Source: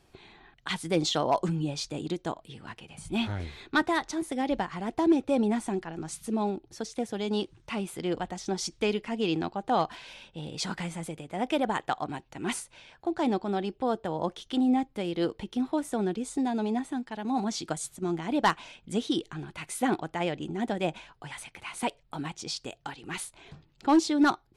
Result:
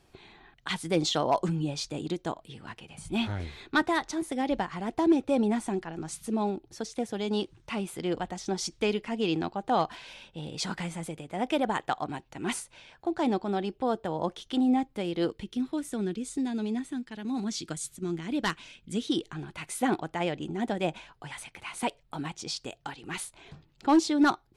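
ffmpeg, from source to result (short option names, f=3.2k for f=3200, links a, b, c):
-filter_complex "[0:a]asettb=1/sr,asplit=3[a][b][c];[a]atrim=end=15.314[d];[b]atrim=start=15.31:end=19.08,asetpts=PTS-STARTPTS,afade=t=in:d=0.004:c=qsin,afade=t=out:st=3.766:d=0.004:c=qsin,equalizer=f=790:t=o:w=1.2:g=-12[e];[c]atrim=start=19.076[f];[d][e]acrossfade=d=0.004:c1=hsin:c2=qsin[g];[g][f]acrossfade=d=0.004:c1=qsin:c2=hsin"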